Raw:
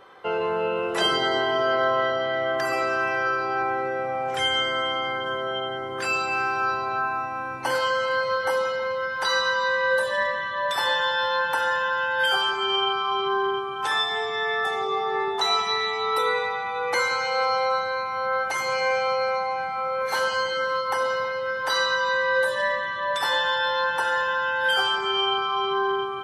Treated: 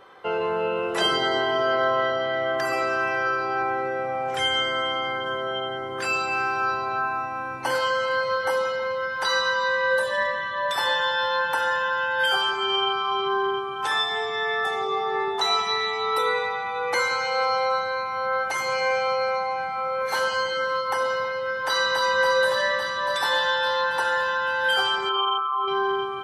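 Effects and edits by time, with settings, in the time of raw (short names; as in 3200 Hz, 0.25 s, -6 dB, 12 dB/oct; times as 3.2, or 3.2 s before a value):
21.56–22.03 echo throw 0.28 s, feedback 80%, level -3 dB
25.09–25.68 formant sharpening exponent 2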